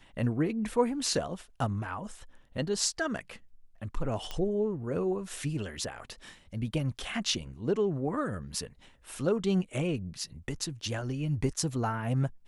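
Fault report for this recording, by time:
0:04.31: click −21 dBFS

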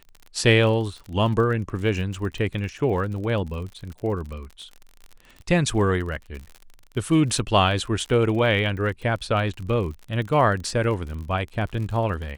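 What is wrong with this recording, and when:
surface crackle 46 per second −32 dBFS

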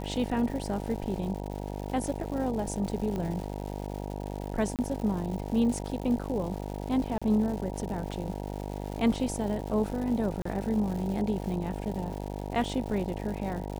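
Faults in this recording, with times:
mains buzz 50 Hz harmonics 19 −36 dBFS
surface crackle 280 per second −37 dBFS
0:03.16: click −21 dBFS
0:04.76–0:04.79: drop-out 28 ms
0:07.18–0:07.22: drop-out 36 ms
0:10.42–0:10.45: drop-out 34 ms

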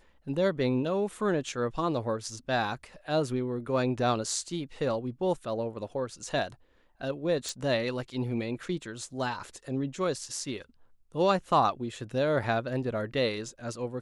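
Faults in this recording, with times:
0:07.49: click

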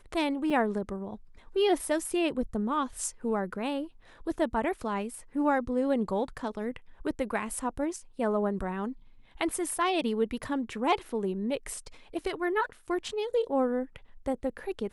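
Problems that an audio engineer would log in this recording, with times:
0:00.50: drop-out 4.6 ms

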